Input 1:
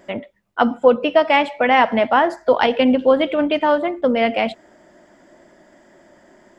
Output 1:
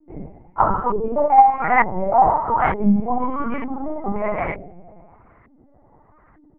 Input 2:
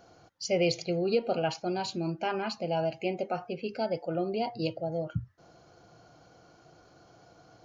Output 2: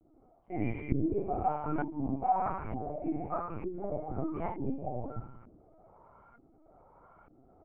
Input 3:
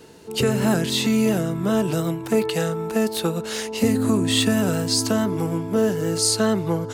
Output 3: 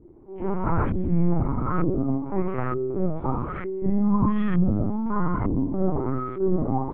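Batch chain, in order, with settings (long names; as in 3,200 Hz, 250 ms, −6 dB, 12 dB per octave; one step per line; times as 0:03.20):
comb filter 0.9 ms, depth 97%
single-sideband voice off tune −54 Hz 180–2,700 Hz
coupled-rooms reverb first 0.86 s, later 2.5 s, DRR −3.5 dB
auto-filter low-pass saw up 1.1 Hz 360–1,700 Hz
linear-prediction vocoder at 8 kHz pitch kept
level −9 dB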